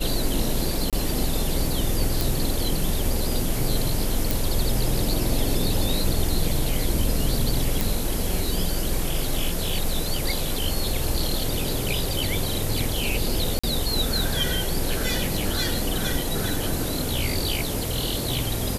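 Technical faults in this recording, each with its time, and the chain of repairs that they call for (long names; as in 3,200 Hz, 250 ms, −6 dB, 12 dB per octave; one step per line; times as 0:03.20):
0:00.90–0:00.93: drop-out 27 ms
0:02.21: click
0:04.31: click
0:07.81: click
0:13.59–0:13.63: drop-out 45 ms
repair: click removal
repair the gap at 0:00.90, 27 ms
repair the gap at 0:13.59, 45 ms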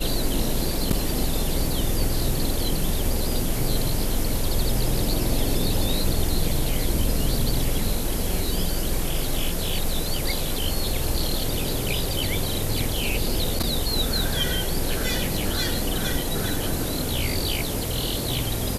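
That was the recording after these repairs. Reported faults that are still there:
none of them is left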